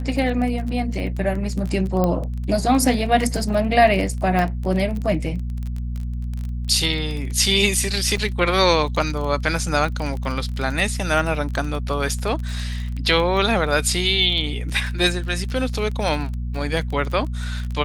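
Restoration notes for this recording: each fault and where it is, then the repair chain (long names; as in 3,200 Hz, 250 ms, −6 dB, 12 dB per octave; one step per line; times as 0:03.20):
surface crackle 22 per second −26 dBFS
mains hum 60 Hz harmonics 4 −26 dBFS
0:02.04: click −9 dBFS
0:04.39: click
0:08.17–0:08.18: drop-out 6 ms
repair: click removal
hum removal 60 Hz, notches 4
repair the gap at 0:08.17, 6 ms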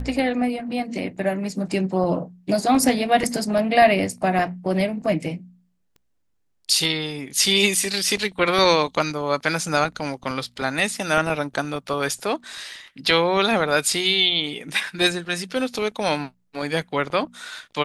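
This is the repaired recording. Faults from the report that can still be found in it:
none of them is left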